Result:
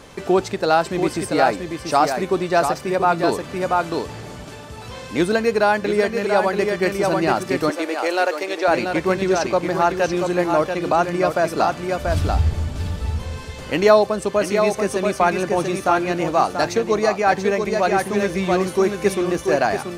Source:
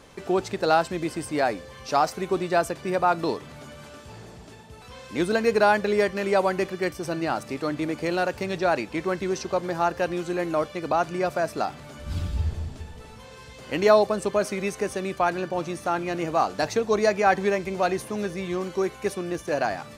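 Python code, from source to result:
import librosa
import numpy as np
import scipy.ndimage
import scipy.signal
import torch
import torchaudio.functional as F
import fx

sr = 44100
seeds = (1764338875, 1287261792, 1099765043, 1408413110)

y = x + 10.0 ** (-6.0 / 20.0) * np.pad(x, (int(685 * sr / 1000.0), 0))[:len(x)]
y = fx.rider(y, sr, range_db=3, speed_s=0.5)
y = fx.highpass(y, sr, hz=380.0, slope=24, at=(7.7, 8.68))
y = y * 10.0 ** (5.0 / 20.0)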